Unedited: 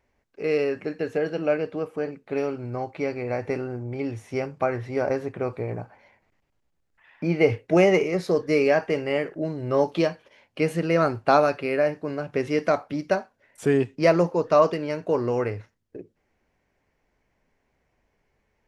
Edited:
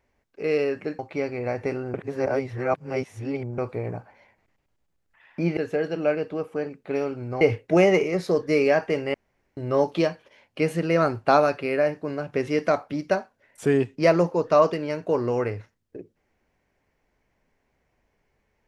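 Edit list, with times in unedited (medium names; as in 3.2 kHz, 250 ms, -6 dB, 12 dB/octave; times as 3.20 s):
0.99–2.83 s: move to 7.41 s
3.78–5.42 s: reverse
9.14–9.57 s: room tone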